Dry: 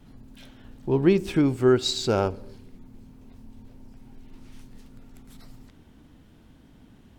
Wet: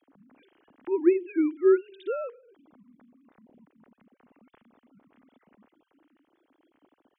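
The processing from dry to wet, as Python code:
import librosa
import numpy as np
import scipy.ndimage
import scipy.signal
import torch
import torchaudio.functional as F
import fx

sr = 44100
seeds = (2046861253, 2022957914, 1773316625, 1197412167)

y = fx.sine_speech(x, sr)
y = y * 10.0 ** (-3.0 / 20.0)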